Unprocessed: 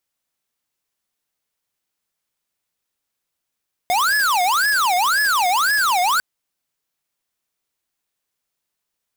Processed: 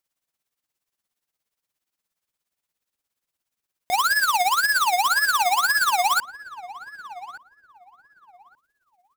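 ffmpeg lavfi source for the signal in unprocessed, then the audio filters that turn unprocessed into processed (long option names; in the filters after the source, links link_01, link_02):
-f lavfi -i "aevalsrc='0.133*(2*lt(mod((1210*t-500/(2*PI*1.9)*sin(2*PI*1.9*t)),1),0.5)-1)':duration=2.3:sample_rate=44100"
-filter_complex "[0:a]tremolo=f=17:d=0.67,asplit=2[link_01][link_02];[link_02]adelay=1175,lowpass=frequency=1100:poles=1,volume=-14dB,asplit=2[link_03][link_04];[link_04]adelay=1175,lowpass=frequency=1100:poles=1,volume=0.25,asplit=2[link_05][link_06];[link_06]adelay=1175,lowpass=frequency=1100:poles=1,volume=0.25[link_07];[link_01][link_03][link_05][link_07]amix=inputs=4:normalize=0"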